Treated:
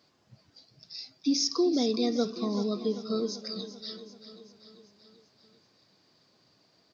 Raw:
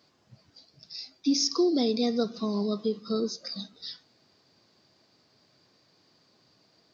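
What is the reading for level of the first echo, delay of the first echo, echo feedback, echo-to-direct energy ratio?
-13.0 dB, 0.388 s, 59%, -11.0 dB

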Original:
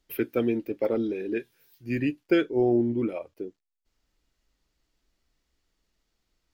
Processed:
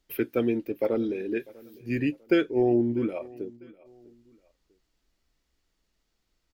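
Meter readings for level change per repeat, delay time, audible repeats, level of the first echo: -9.5 dB, 0.648 s, 2, -22.5 dB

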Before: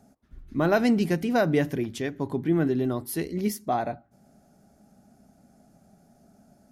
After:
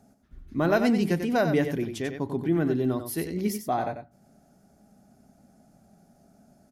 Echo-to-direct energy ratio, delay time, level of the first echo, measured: -8.0 dB, 93 ms, -8.0 dB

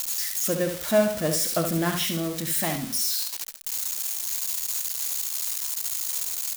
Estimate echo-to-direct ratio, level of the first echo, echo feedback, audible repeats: -6.0 dB, -6.5 dB, no steady repeat, 2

